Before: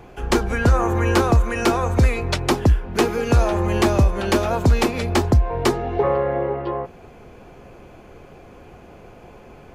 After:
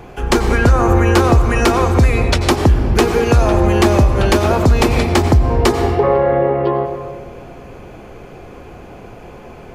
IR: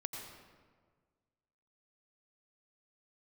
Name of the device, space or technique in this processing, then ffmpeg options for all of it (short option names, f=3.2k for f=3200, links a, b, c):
ducked reverb: -filter_complex "[0:a]asplit=3[a][b][c];[1:a]atrim=start_sample=2205[d];[b][d]afir=irnorm=-1:irlink=0[e];[c]apad=whole_len=429754[f];[e][f]sidechaincompress=threshold=-18dB:ratio=8:attack=11:release=233,volume=4.5dB[g];[a][g]amix=inputs=2:normalize=0"